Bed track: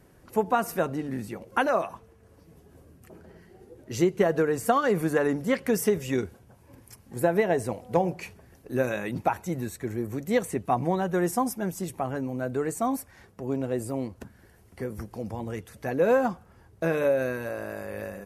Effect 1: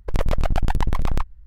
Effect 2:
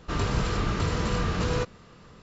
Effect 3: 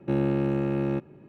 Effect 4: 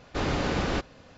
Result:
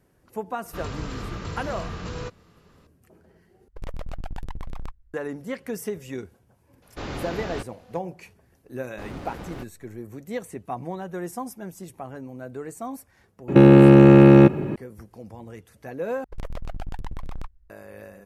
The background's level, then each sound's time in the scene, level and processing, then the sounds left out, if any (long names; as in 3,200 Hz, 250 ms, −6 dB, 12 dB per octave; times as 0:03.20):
bed track −7 dB
0:00.65: mix in 2 −7 dB
0:03.68: overwrite with 1 −13.5 dB
0:06.82: mix in 4 −5.5 dB
0:08.83: mix in 4 −10 dB + slack as between gear wheels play −30 dBFS
0:13.48: mix in 3 −1.5 dB + boost into a limiter +24 dB
0:16.24: overwrite with 1 −13 dB